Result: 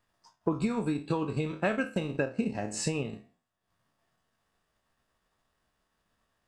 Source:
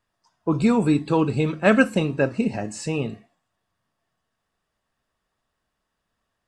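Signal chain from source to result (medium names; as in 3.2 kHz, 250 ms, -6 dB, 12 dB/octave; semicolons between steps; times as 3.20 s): spectral sustain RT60 0.39 s; compression 6:1, threshold -28 dBFS, peak gain reduction 17 dB; transient shaper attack +3 dB, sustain -10 dB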